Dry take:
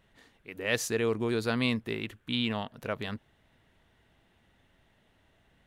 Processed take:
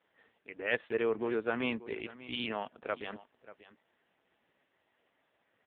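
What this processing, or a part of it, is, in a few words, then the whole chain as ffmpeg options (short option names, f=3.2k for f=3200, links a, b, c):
satellite phone: -af "highpass=320,lowpass=3k,aecho=1:1:585:0.141" -ar 8000 -c:a libopencore_amrnb -b:a 5150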